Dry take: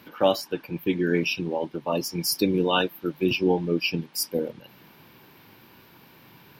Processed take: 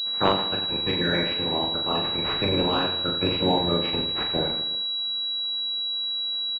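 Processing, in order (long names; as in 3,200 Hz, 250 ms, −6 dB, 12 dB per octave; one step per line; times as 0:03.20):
ceiling on every frequency bin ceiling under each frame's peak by 25 dB
reverse bouncing-ball delay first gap 40 ms, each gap 1.3×, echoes 5
switching amplifier with a slow clock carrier 3,900 Hz
level −1.5 dB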